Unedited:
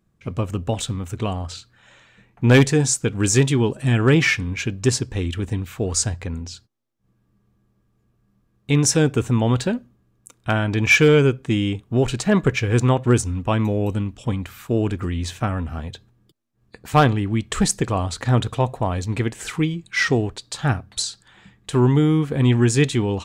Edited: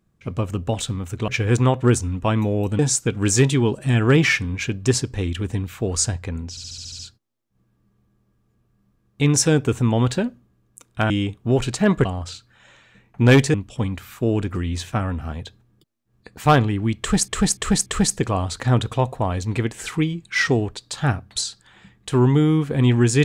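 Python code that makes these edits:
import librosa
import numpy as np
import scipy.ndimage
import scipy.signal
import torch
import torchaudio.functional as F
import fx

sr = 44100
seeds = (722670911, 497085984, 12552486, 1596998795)

y = fx.edit(x, sr, fx.swap(start_s=1.28, length_s=1.49, other_s=12.51, other_length_s=1.51),
    fx.stutter(start_s=6.48, slice_s=0.07, count=8),
    fx.cut(start_s=10.59, length_s=0.97),
    fx.repeat(start_s=17.47, length_s=0.29, count=4), tone=tone)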